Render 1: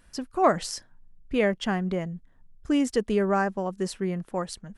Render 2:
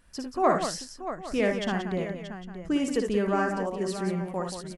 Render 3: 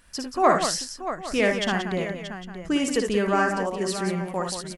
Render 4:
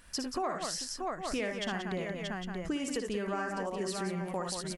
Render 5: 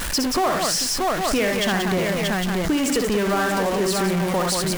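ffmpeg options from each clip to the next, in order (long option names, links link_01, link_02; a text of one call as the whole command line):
ffmpeg -i in.wav -af "aecho=1:1:58|74|180|630|804:0.531|0.335|0.376|0.282|0.133,volume=-3dB" out.wav
ffmpeg -i in.wav -af "tiltshelf=frequency=970:gain=-3.5,volume=5dB" out.wav
ffmpeg -i in.wav -af "acompressor=threshold=-32dB:ratio=6" out.wav
ffmpeg -i in.wav -af "aeval=exprs='val(0)+0.5*0.0299*sgn(val(0))':channel_layout=same,volume=9dB" out.wav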